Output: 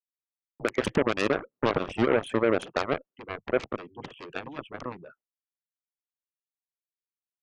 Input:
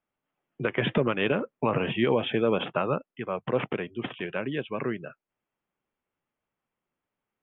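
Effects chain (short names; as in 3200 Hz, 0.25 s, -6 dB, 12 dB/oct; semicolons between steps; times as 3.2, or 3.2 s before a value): formant sharpening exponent 2; expander -48 dBFS; added harmonics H 4 -27 dB, 5 -29 dB, 6 -38 dB, 7 -12 dB, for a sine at -12.5 dBFS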